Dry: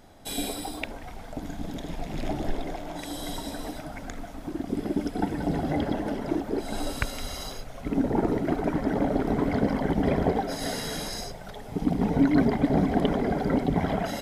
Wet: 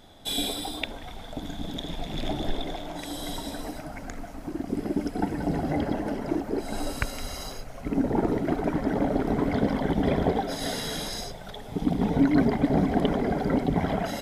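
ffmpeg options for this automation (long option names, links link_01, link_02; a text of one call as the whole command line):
ffmpeg -i in.wav -af "asetnsamples=nb_out_samples=441:pad=0,asendcmd='2.87 equalizer g 4;3.61 equalizer g -7;8.08 equalizer g 0.5;9.54 equalizer g 8.5;12.2 equalizer g 1',equalizer=frequency=3500:width_type=o:width=0.21:gain=15" out.wav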